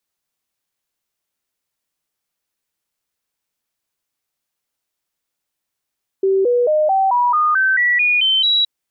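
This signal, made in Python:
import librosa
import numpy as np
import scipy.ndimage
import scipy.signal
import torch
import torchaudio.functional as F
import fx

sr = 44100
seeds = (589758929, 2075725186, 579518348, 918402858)

y = fx.stepped_sweep(sr, from_hz=386.0, direction='up', per_octave=3, tones=11, dwell_s=0.22, gap_s=0.0, level_db=-12.0)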